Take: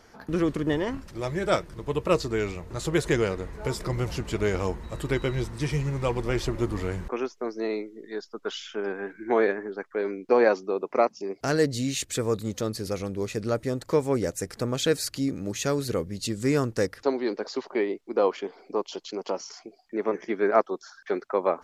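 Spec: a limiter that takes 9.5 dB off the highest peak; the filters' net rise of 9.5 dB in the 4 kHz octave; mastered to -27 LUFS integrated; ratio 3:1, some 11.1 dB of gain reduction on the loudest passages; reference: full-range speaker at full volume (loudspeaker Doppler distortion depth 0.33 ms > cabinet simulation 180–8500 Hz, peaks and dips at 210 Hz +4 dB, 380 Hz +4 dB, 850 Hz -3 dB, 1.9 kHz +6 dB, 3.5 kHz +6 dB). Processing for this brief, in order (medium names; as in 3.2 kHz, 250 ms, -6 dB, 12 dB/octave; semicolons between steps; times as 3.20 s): peaking EQ 4 kHz +7.5 dB; compression 3:1, threshold -31 dBFS; peak limiter -26.5 dBFS; loudspeaker Doppler distortion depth 0.33 ms; cabinet simulation 180–8500 Hz, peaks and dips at 210 Hz +4 dB, 380 Hz +4 dB, 850 Hz -3 dB, 1.9 kHz +6 dB, 3.5 kHz +6 dB; trim +8.5 dB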